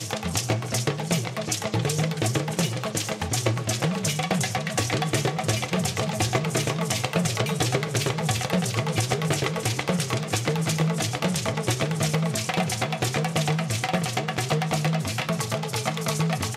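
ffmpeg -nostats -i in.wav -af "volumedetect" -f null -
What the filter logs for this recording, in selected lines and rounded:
mean_volume: -25.5 dB
max_volume: -8.2 dB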